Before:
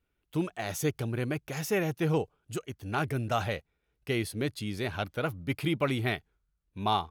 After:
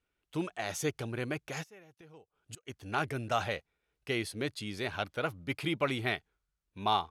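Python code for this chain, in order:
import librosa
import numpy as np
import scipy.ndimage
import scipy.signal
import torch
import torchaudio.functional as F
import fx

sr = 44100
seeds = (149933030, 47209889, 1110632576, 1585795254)

y = scipy.signal.sosfilt(scipy.signal.butter(2, 9800.0, 'lowpass', fs=sr, output='sos'), x)
y = fx.low_shelf(y, sr, hz=310.0, db=-8.0)
y = fx.gate_flip(y, sr, shuts_db=-31.0, range_db=-24, at=(1.62, 2.65), fade=0.02)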